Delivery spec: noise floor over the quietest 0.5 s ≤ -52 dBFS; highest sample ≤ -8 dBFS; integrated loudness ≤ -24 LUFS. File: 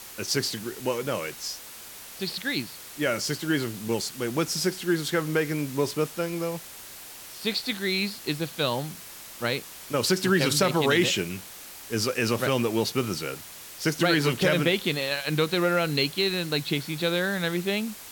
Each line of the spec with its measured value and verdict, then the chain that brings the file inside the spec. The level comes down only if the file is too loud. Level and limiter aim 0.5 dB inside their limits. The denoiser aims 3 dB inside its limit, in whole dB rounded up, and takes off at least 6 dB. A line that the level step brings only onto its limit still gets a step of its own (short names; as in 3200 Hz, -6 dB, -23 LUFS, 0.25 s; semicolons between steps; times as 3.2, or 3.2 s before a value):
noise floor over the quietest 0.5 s -43 dBFS: fail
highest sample -7.5 dBFS: fail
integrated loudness -26.5 LUFS: OK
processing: denoiser 12 dB, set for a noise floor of -43 dBFS; limiter -8.5 dBFS